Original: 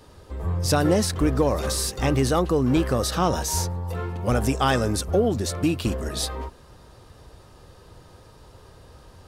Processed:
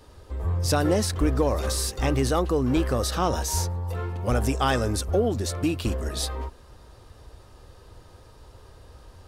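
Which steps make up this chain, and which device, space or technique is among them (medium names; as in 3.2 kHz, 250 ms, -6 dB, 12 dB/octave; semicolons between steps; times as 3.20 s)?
low shelf boost with a cut just above (bass shelf 93 Hz +6 dB; peaking EQ 160 Hz -6 dB 0.77 oct); trim -2 dB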